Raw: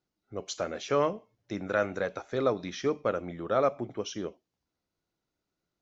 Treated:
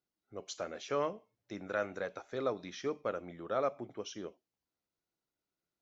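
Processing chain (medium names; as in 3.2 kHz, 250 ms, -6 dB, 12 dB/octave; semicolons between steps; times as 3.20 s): bass shelf 190 Hz -6 dB; trim -6.5 dB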